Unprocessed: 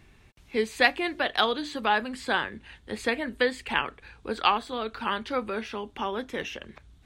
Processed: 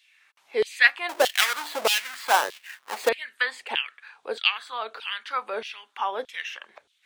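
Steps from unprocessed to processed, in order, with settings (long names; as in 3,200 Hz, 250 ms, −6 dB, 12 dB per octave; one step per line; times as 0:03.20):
0:01.09–0:03.09: each half-wave held at its own peak
auto-filter high-pass saw down 1.6 Hz 460–3,400 Hz
level −1 dB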